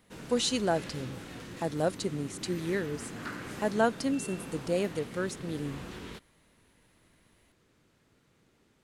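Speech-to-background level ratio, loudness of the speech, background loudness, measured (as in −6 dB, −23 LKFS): 11.0 dB, −32.0 LKFS, −43.0 LKFS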